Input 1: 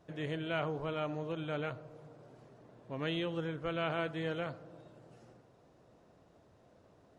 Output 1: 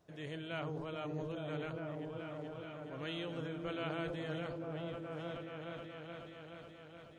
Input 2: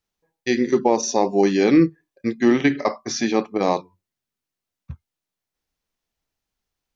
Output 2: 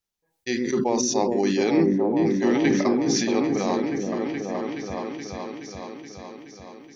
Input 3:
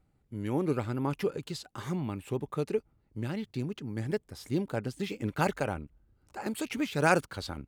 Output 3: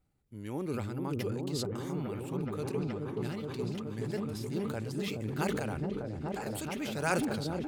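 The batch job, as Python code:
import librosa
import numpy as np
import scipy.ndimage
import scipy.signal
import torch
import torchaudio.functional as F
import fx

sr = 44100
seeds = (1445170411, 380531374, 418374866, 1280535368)

p1 = fx.high_shelf(x, sr, hz=3600.0, db=7.0)
p2 = p1 + fx.echo_opening(p1, sr, ms=424, hz=400, octaves=1, feedback_pct=70, wet_db=0, dry=0)
p3 = fx.sustainer(p2, sr, db_per_s=28.0)
y = p3 * 10.0 ** (-7.5 / 20.0)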